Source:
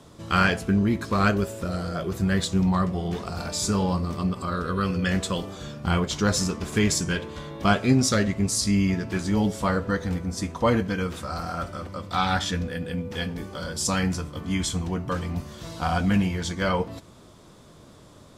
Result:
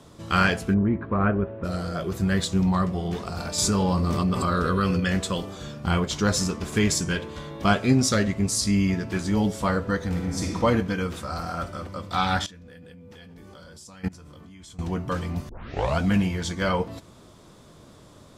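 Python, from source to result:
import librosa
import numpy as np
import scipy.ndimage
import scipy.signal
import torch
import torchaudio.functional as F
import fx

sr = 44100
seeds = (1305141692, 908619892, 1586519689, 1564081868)

y = fx.gaussian_blur(x, sr, sigma=4.5, at=(0.73, 1.63), fade=0.02)
y = fx.env_flatten(y, sr, amount_pct=70, at=(3.58, 5.0))
y = fx.reverb_throw(y, sr, start_s=10.08, length_s=0.47, rt60_s=1.7, drr_db=-1.0)
y = fx.level_steps(y, sr, step_db=23, at=(12.46, 14.79))
y = fx.edit(y, sr, fx.tape_start(start_s=15.49, length_s=0.5), tone=tone)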